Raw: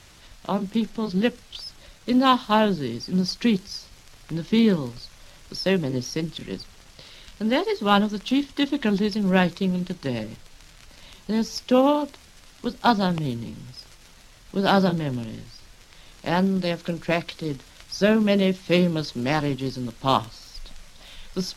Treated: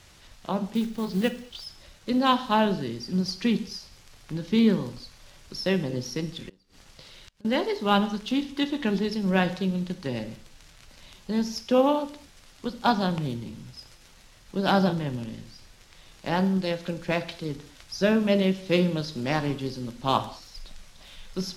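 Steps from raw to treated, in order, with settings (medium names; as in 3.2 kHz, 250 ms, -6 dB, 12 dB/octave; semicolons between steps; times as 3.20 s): 0.75–1.66 s: block-companded coder 5-bit; gated-style reverb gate 240 ms falling, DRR 10.5 dB; 6.49–7.45 s: inverted gate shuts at -28 dBFS, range -25 dB; trim -3.5 dB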